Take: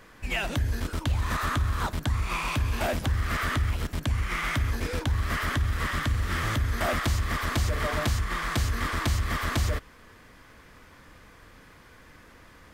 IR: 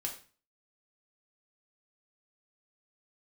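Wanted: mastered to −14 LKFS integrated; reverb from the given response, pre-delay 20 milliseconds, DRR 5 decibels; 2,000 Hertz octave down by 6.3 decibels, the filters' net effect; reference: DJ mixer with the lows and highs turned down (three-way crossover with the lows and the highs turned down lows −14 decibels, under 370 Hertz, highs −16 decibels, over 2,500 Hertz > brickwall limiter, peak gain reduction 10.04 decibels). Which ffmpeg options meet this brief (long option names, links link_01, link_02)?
-filter_complex "[0:a]equalizer=frequency=2000:width_type=o:gain=-5.5,asplit=2[link_01][link_02];[1:a]atrim=start_sample=2205,adelay=20[link_03];[link_02][link_03]afir=irnorm=-1:irlink=0,volume=-5.5dB[link_04];[link_01][link_04]amix=inputs=2:normalize=0,acrossover=split=370 2500:gain=0.2 1 0.158[link_05][link_06][link_07];[link_05][link_06][link_07]amix=inputs=3:normalize=0,volume=24.5dB,alimiter=limit=-5dB:level=0:latency=1"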